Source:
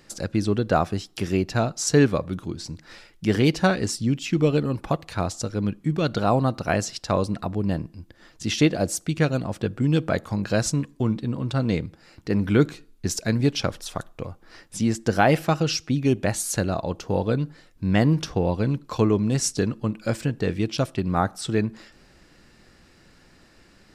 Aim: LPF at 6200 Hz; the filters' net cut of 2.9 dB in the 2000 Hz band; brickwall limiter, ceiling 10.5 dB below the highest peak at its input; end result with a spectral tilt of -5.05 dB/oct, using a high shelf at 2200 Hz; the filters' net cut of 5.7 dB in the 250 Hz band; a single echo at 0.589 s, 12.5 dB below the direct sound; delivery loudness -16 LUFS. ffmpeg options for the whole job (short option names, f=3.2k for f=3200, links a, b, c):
-af "lowpass=6.2k,equalizer=f=250:t=o:g=-8,equalizer=f=2k:t=o:g=-5.5,highshelf=f=2.2k:g=3,alimiter=limit=-17dB:level=0:latency=1,aecho=1:1:589:0.237,volume=13dB"